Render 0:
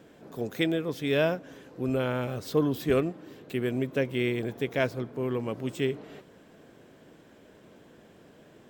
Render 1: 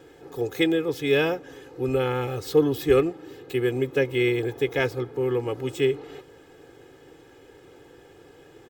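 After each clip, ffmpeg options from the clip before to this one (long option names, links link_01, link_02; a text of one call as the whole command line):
ffmpeg -i in.wav -af "aecho=1:1:2.4:0.9,volume=2dB" out.wav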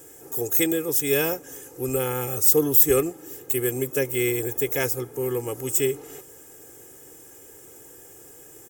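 ffmpeg -i in.wav -af "aexciter=amount=15.7:drive=5.2:freq=6200,volume=-2dB" out.wav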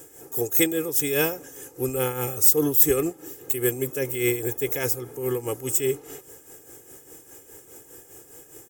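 ffmpeg -i in.wav -af "tremolo=f=4.9:d=0.61,volume=2.5dB" out.wav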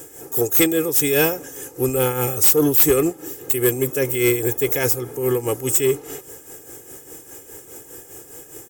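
ffmpeg -i in.wav -af "asoftclip=type=tanh:threshold=-15dB,volume=7dB" out.wav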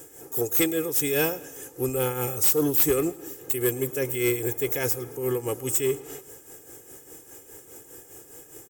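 ffmpeg -i in.wav -af "aecho=1:1:109|218|327|436:0.0891|0.0463|0.0241|0.0125,volume=-6.5dB" out.wav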